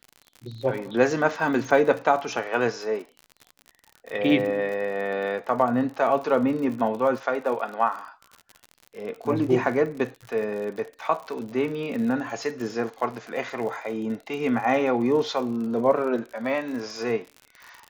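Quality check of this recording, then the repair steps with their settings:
surface crackle 57 per second −33 dBFS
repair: click removal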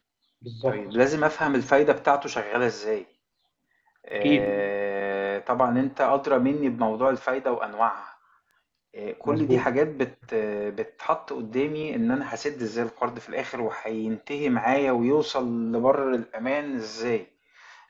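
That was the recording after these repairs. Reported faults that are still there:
none of them is left

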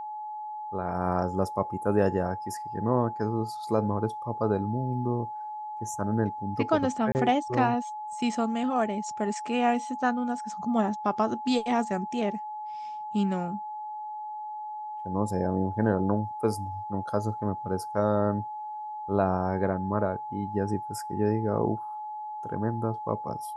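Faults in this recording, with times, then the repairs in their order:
whistle 850 Hz −34 dBFS
0:07.12–0:07.15: drop-out 29 ms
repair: notch filter 850 Hz, Q 30
repair the gap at 0:07.12, 29 ms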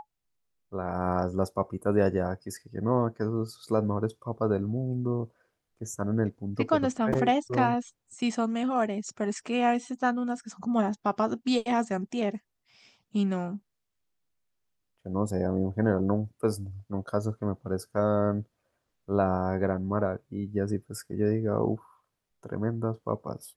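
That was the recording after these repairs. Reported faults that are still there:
none of them is left

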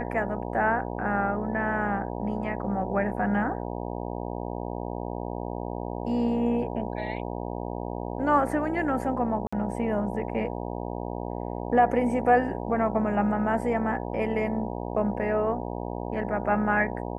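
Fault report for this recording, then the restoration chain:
mains buzz 60 Hz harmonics 16 −33 dBFS
0:09.47–0:09.53: drop-out 55 ms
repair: hum removal 60 Hz, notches 16
repair the gap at 0:09.47, 55 ms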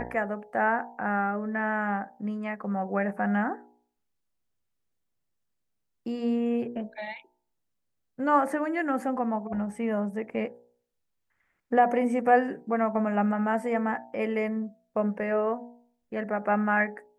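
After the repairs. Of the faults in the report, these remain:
none of them is left

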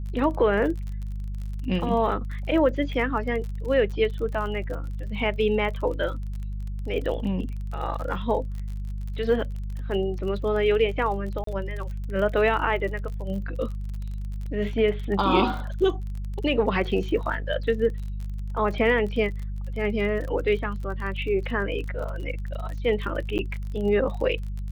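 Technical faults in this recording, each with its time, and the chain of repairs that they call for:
surface crackle 36 per second −33 dBFS
mains hum 50 Hz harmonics 4 −31 dBFS
0:11.44–0:11.47: drop-out 33 ms
0:23.38–0:23.39: drop-out 9.6 ms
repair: click removal
hum removal 50 Hz, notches 4
repair the gap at 0:11.44, 33 ms
repair the gap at 0:23.38, 9.6 ms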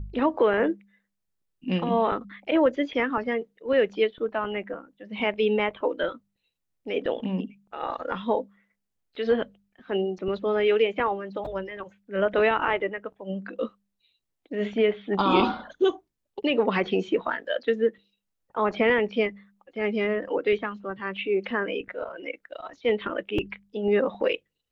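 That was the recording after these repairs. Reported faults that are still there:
none of them is left

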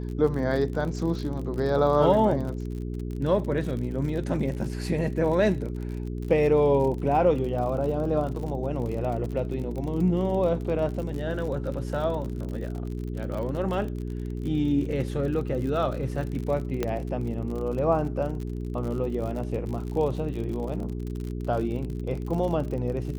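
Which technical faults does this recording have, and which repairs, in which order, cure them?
surface crackle 53 per second −33 dBFS
mains hum 60 Hz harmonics 7 −32 dBFS
0:16.83: click −13 dBFS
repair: click removal
hum removal 60 Hz, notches 7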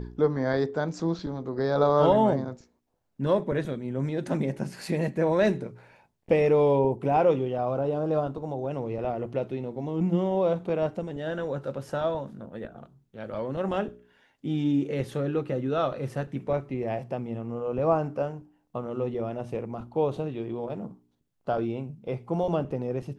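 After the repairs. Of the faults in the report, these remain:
0:16.83: click

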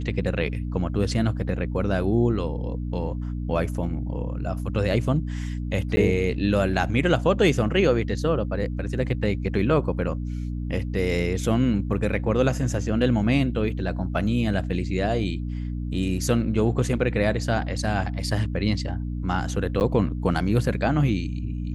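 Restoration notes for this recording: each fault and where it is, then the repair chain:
mains hum 60 Hz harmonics 5 −29 dBFS
0:05.96–0:05.97: drop-out 10 ms
0:19.80–0:19.81: drop-out 9.7 ms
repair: hum removal 60 Hz, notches 5
repair the gap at 0:05.96, 10 ms
repair the gap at 0:19.80, 9.7 ms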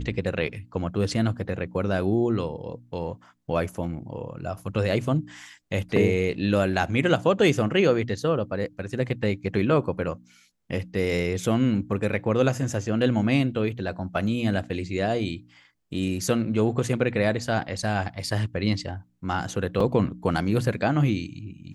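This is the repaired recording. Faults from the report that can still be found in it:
none of them is left

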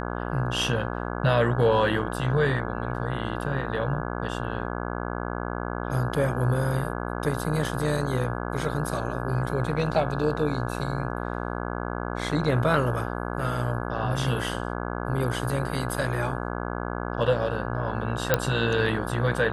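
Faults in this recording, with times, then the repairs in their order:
mains buzz 60 Hz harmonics 28 −31 dBFS
0:18.34: click −5 dBFS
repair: click removal
hum removal 60 Hz, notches 28

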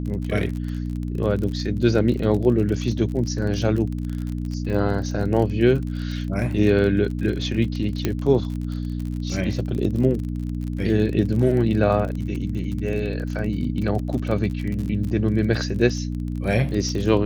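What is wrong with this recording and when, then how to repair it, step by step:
surface crackle 39 per second −28 dBFS
mains hum 60 Hz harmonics 5 −27 dBFS
0:08.05: click −8 dBFS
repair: click removal
hum removal 60 Hz, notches 5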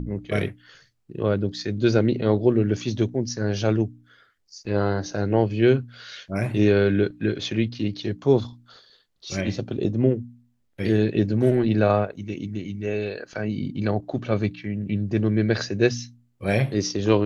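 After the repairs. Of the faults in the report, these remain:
none of them is left

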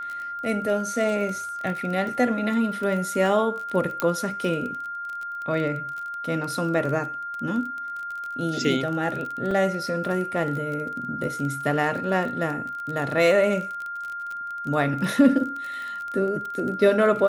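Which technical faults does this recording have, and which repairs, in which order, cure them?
surface crackle 26 per second −30 dBFS
whistle 1,400 Hz −30 dBFS
0:04.00: click −10 dBFS
0:09.51: drop-out 2.8 ms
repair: click removal
notch filter 1,400 Hz, Q 30
repair the gap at 0:09.51, 2.8 ms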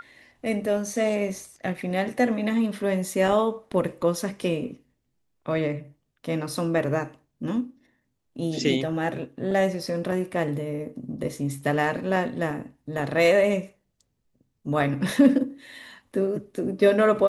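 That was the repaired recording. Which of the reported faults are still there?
none of them is left

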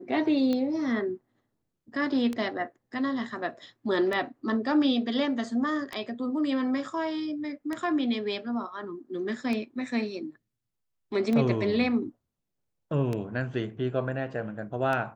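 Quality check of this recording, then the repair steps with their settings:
scratch tick 33 1/3 rpm −18 dBFS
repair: click removal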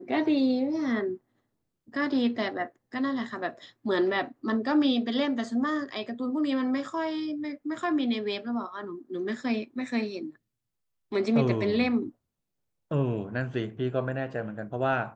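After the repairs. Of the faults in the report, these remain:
none of them is left

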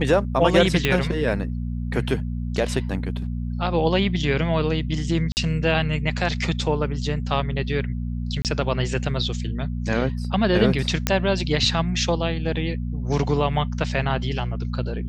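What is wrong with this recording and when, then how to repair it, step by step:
mains hum 60 Hz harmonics 4 −27 dBFS
0:00.85: click −6 dBFS
0:05.32–0:05.37: drop-out 49 ms
0:08.42–0:08.45: drop-out 28 ms
0:11.07: click −3 dBFS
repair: click removal
hum removal 60 Hz, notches 4
repair the gap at 0:05.32, 49 ms
repair the gap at 0:08.42, 28 ms

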